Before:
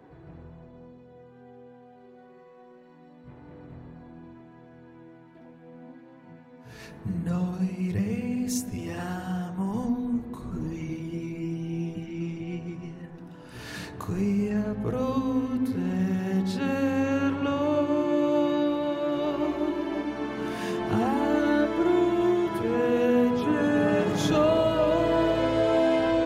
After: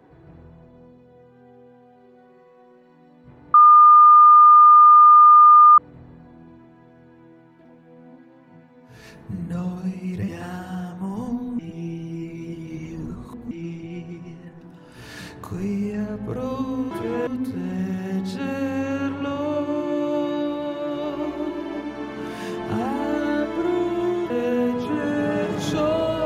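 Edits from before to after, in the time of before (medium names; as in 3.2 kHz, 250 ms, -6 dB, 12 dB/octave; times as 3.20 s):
3.54 s: add tone 1.21 kHz -6.5 dBFS 2.24 s
8.04–8.85 s: delete
10.16–12.08 s: reverse
22.51–22.87 s: move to 15.48 s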